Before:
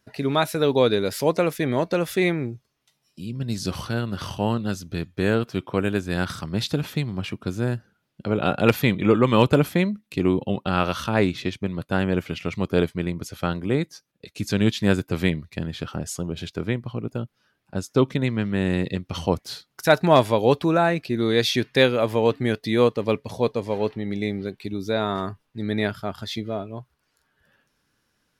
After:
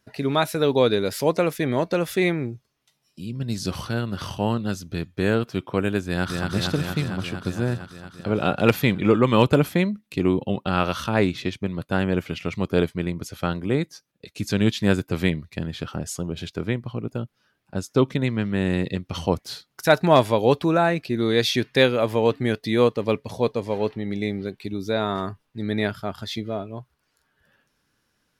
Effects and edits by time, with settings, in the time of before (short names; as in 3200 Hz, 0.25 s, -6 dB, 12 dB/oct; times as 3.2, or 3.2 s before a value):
6.04–6.49 echo throw 0.23 s, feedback 80%, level -3 dB